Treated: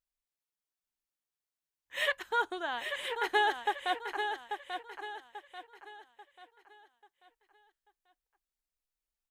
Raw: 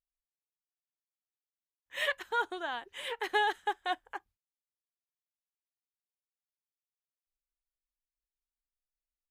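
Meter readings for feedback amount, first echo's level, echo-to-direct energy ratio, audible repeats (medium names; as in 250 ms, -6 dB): 39%, -7.0 dB, -6.5 dB, 4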